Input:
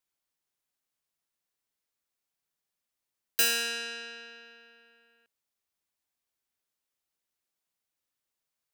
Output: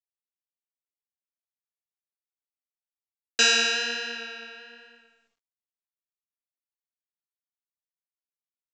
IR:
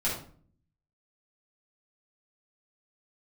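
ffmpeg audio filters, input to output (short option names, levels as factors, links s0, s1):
-filter_complex "[0:a]agate=range=0.0224:threshold=0.00112:ratio=3:detection=peak,dynaudnorm=f=150:g=7:m=3.98,acrusher=bits=8:mode=log:mix=0:aa=0.000001,flanger=delay=7.4:depth=8.7:regen=1:speed=1.2:shape=triangular,asplit=2[s0][s1];[1:a]atrim=start_sample=2205[s2];[s1][s2]afir=irnorm=-1:irlink=0,volume=0.0668[s3];[s0][s3]amix=inputs=2:normalize=0" -ar 16000 -c:a pcm_mulaw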